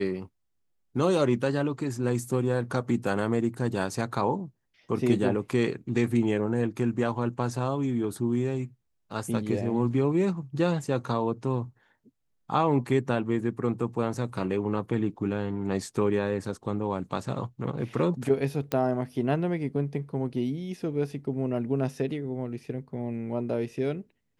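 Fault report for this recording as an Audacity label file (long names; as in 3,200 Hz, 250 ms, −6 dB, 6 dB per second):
18.720000	18.720000	click −13 dBFS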